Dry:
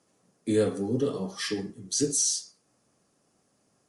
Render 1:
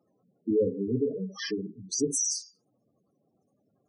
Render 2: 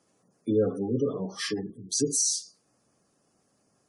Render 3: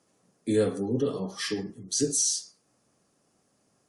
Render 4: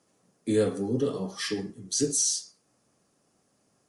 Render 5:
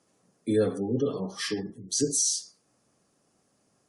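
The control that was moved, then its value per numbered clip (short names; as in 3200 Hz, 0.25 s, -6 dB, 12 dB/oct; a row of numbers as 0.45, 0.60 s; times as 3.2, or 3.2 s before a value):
spectral gate, under each frame's peak: -10, -25, -45, -60, -35 dB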